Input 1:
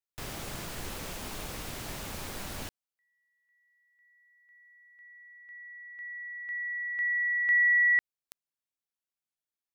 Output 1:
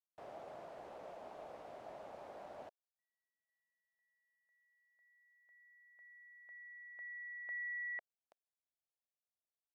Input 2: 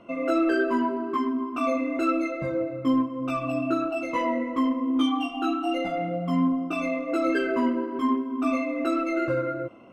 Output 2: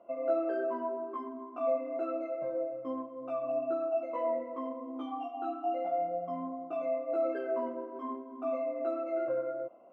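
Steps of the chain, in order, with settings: band-pass 650 Hz, Q 3.5

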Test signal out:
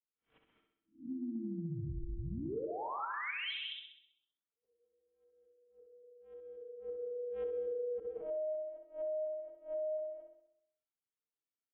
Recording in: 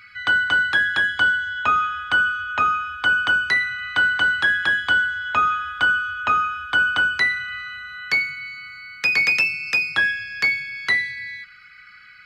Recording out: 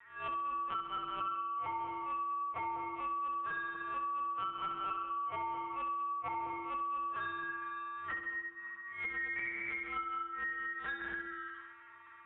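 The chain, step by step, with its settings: spectral swells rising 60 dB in 0.31 s; non-linear reverb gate 0.24 s rising, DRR 3.5 dB; LPC vocoder at 8 kHz pitch kept; frequency shift -340 Hz; air absorption 170 m; resonator 450 Hz, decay 0.17 s, harmonics odd, mix 80%; flutter echo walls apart 11.1 m, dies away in 0.71 s; compressor 4:1, threshold -37 dBFS

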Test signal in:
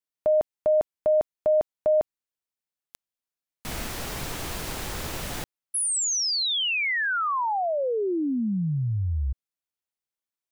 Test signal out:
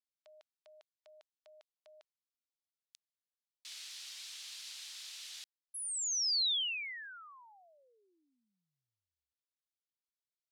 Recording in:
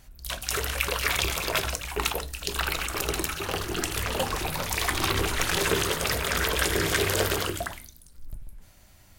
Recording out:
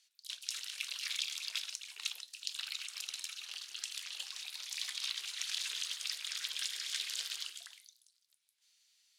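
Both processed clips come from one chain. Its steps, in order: ladder band-pass 4800 Hz, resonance 30%; gain +3 dB

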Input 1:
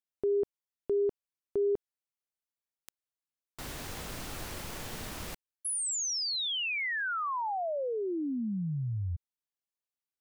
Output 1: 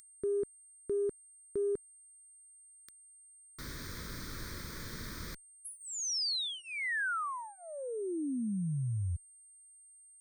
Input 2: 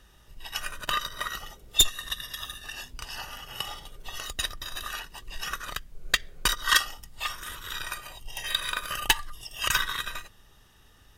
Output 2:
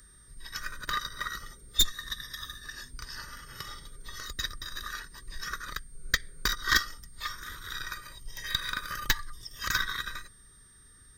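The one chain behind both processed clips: added harmonics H 2 -8 dB, 4 -29 dB, 5 -30 dB, 8 -38 dB, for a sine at -11.5 dBFS; whine 8700 Hz -33 dBFS; fixed phaser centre 2800 Hz, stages 6; gain -1.5 dB

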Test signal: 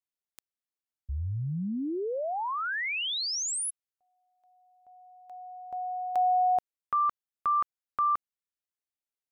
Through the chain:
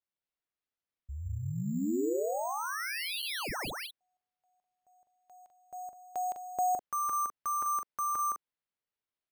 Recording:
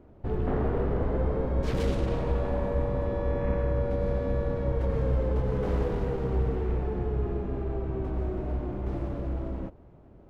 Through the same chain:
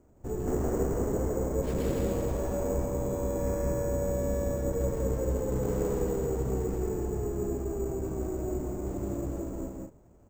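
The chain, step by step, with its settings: dynamic EQ 350 Hz, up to +7 dB, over -45 dBFS, Q 0.83; loudspeakers at several distances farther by 56 m -2 dB, 70 m -7 dB; careless resampling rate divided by 6×, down none, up hold; gain -7.5 dB

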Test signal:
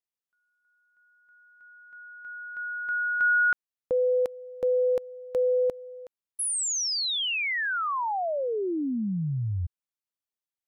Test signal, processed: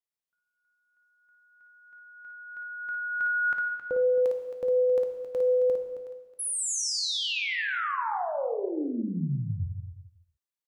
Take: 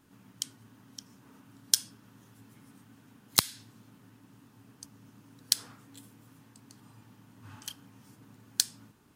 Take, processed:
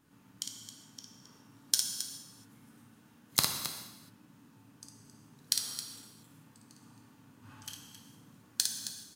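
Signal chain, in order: on a send: loudspeakers at several distances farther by 19 m -5 dB, 92 m -11 dB; on the sum: non-linear reverb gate 0.45 s falling, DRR 4 dB; gain -4.5 dB

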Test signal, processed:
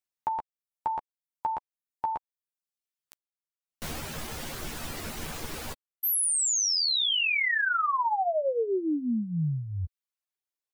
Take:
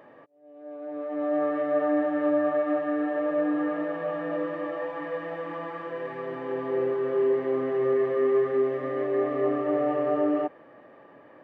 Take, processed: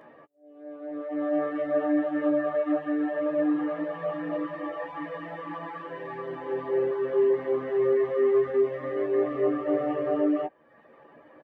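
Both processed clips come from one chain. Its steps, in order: reverb removal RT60 0.87 s; doubler 13 ms -5 dB

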